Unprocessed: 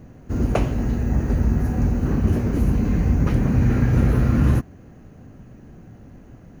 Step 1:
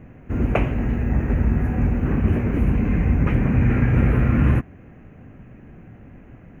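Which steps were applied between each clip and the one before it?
resonant high shelf 3300 Hz -11 dB, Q 3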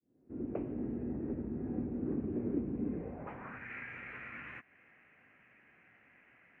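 opening faded in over 1.19 s; compressor 4:1, threshold -23 dBFS, peak gain reduction 9.5 dB; band-pass sweep 330 Hz -> 2100 Hz, 2.89–3.71; gain -1 dB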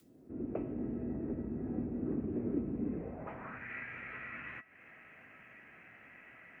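in parallel at +0.5 dB: upward compressor, threshold -42 dBFS; on the sum: resonator 650 Hz, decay 0.2 s, harmonics all, mix 70%; gain +3.5 dB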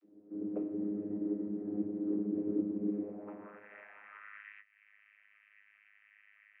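air absorption 180 m; high-pass sweep 300 Hz -> 2200 Hz, 3.36–4.54; vocoder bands 32, saw 103 Hz; gain -1.5 dB

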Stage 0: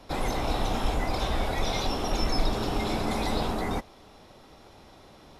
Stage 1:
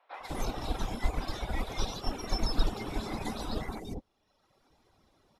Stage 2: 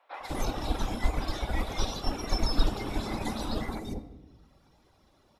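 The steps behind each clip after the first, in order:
reverb removal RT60 1.3 s; three bands offset in time mids, highs, lows 0.14/0.2 s, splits 620/2900 Hz; upward expander 1.5:1, over -46 dBFS; gain +2 dB
on a send at -10.5 dB: HPF 46 Hz + reverb RT60 1.1 s, pre-delay 3 ms; on the sum: gain +2.5 dB

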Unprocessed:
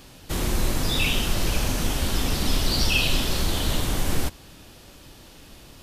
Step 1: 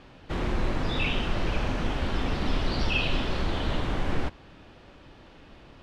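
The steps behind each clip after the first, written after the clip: LPF 2300 Hz 12 dB/oct; low shelf 270 Hz -4 dB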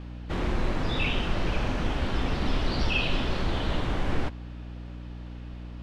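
hum 60 Hz, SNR 12 dB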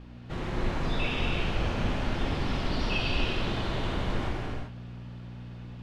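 non-linear reverb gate 0.42 s flat, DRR -3 dB; gain -6 dB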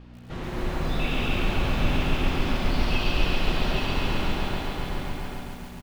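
echo 0.821 s -4 dB; lo-fi delay 0.138 s, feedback 80%, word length 8-bit, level -5 dB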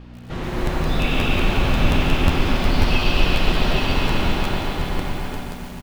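crackling interface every 0.18 s, samples 512, repeat, from 0.65; gain +6 dB

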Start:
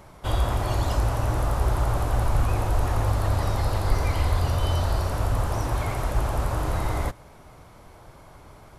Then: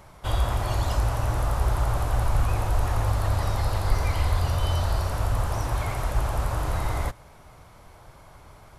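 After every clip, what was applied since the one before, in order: bell 300 Hz -5 dB 1.7 oct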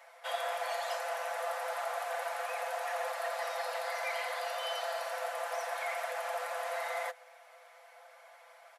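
rippled Chebyshev high-pass 490 Hz, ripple 9 dB; comb 5.9 ms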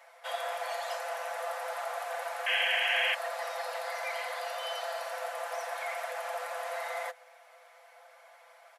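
painted sound noise, 2.46–3.15, 1500–3300 Hz -29 dBFS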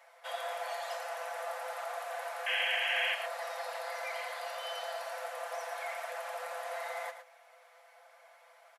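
echo 0.111 s -9.5 dB; gain -3.5 dB

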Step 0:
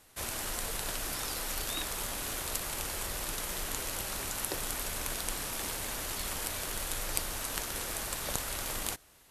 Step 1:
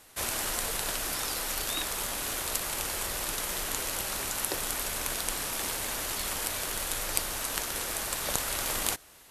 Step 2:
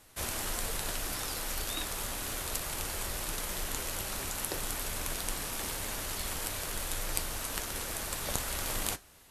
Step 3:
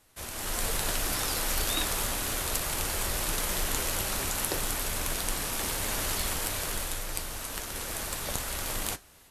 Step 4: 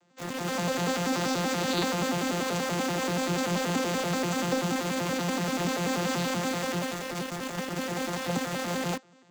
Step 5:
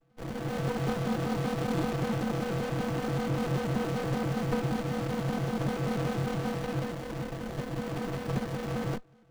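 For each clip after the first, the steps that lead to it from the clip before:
low shelf 220 Hz -5.5 dB; vocal rider within 5 dB 2 s; gain +4 dB
low shelf 210 Hz +8 dB; flange 1.7 Hz, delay 9.4 ms, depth 3.9 ms, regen -66%
AGC gain up to 12.5 dB; in parallel at -5 dB: soft clip -15.5 dBFS, distortion -17 dB; on the sum: gain -9 dB
arpeggiated vocoder bare fifth, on F3, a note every 96 ms; in parallel at -9.5 dB: companded quantiser 2-bit; on the sum: gain +1.5 dB
frequency shift -39 Hz; running maximum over 33 samples

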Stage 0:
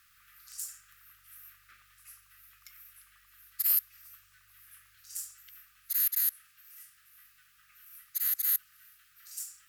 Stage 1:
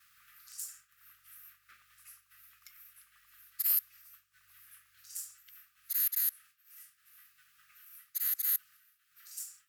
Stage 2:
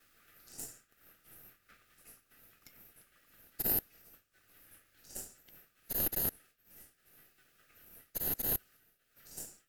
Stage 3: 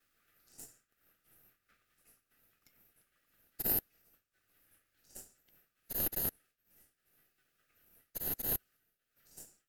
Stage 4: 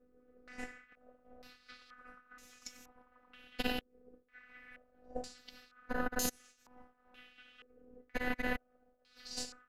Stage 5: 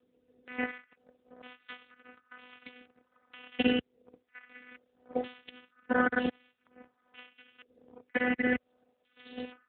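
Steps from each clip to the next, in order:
upward compressor, threshold -47 dBFS; expander -50 dBFS; HPF 120 Hz 6 dB/oct; gain -2.5 dB
half-wave gain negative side -3 dB; in parallel at -9 dB: sample-and-hold 39×; on the sum: gain -2 dB
upward expander 1.5:1, over -48 dBFS
compressor 4:1, threshold -40 dBFS, peak gain reduction 12 dB; robotiser 249 Hz; stepped low-pass 2.1 Hz 430–6600 Hz; gain +17 dB
sample leveller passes 2; rotary speaker horn 1.1 Hz; gain +6.5 dB; AMR-NB 7.95 kbps 8000 Hz

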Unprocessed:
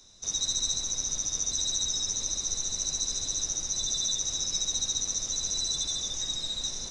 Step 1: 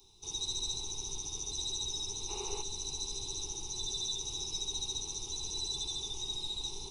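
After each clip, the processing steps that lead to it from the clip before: spectral gain 2.29–2.62, 360–3000 Hz +11 dB; EQ curve 120 Hz 0 dB, 260 Hz -8 dB, 400 Hz +9 dB, 590 Hz -23 dB, 840 Hz +7 dB, 1700 Hz -24 dB, 2700 Hz +1 dB, 6800 Hz -10 dB, 11000 Hz +10 dB; gain -2 dB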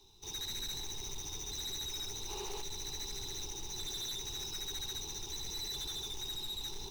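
median filter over 5 samples; hard clip -38 dBFS, distortion -11 dB; gain +1 dB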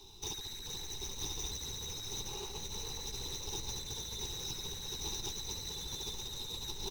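negative-ratio compressor -44 dBFS, ratio -0.5; on a send: frequency-shifting echo 0.433 s, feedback 50%, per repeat +50 Hz, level -6 dB; on the sum: gain +3 dB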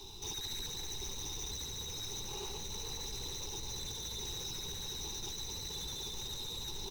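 limiter -39 dBFS, peak gain reduction 10.5 dB; gain +5.5 dB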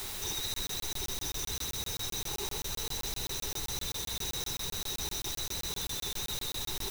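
in parallel at -4.5 dB: requantised 6-bit, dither triangular; on the sum: crackling interface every 0.13 s, samples 1024, zero, from 0.54

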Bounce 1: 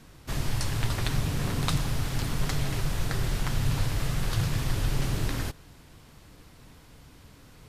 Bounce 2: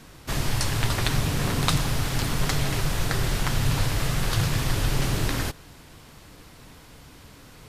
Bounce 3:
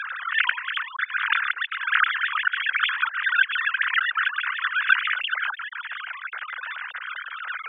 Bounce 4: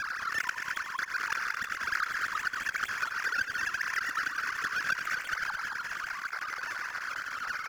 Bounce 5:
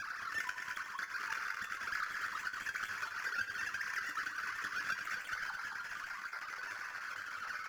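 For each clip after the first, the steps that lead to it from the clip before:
low shelf 240 Hz -4.5 dB; gain +6.5 dB
sine-wave speech; negative-ratio compressor -29 dBFS, ratio -0.5; resonant high-pass 1500 Hz, resonance Q 4.8; gain -2.5 dB
median filter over 15 samples; on a send: loudspeakers at several distances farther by 30 m -10 dB, 75 m -8 dB; on the sum: compressor 2.5:1, threshold -32 dBFS, peak gain reduction 12 dB
resonator 100 Hz, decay 0.18 s, harmonics all, mix 80%; gain -1.5 dB

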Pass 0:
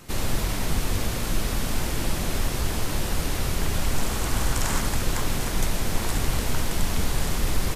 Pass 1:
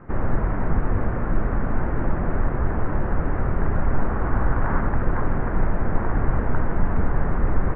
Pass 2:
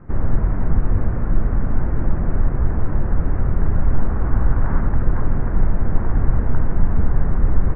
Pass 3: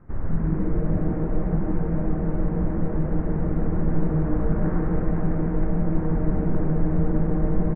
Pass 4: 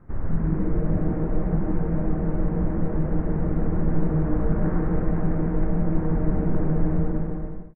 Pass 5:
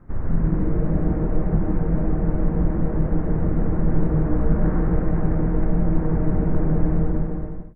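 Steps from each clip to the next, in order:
steep low-pass 1700 Hz 36 dB/oct; gain +4 dB
low shelf 250 Hz +10.5 dB; gain -5 dB
frequency-shifting echo 0.15 s, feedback 54%, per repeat +150 Hz, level -5.5 dB; gain -8.5 dB
ending faded out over 0.87 s
octaver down 2 oct, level -2 dB; gain +1.5 dB

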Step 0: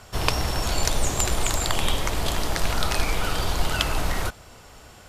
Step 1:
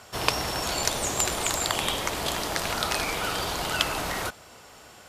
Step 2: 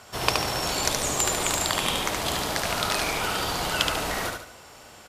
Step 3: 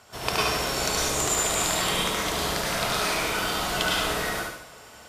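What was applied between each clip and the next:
HPF 250 Hz 6 dB/oct
feedback echo 72 ms, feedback 39%, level -4 dB
plate-style reverb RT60 0.62 s, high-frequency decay 0.95×, pre-delay 90 ms, DRR -5 dB; gain -5.5 dB

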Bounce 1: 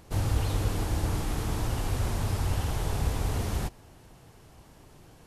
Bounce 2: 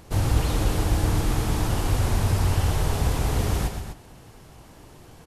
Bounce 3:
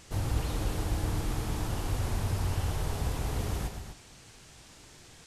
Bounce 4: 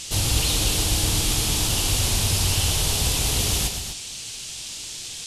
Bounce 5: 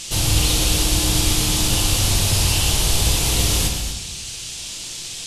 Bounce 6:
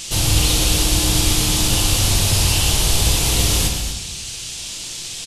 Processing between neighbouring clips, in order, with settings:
loudspeakers at several distances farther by 40 m -8 dB, 85 m -10 dB; gain +5 dB
band noise 1200–8600 Hz -48 dBFS; gain -8.5 dB
band shelf 5600 Hz +16 dB 2.6 oct; gain +6 dB
shoebox room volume 380 m³, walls mixed, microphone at 0.8 m; gain +2 dB
downsampling 32000 Hz; gain +1.5 dB

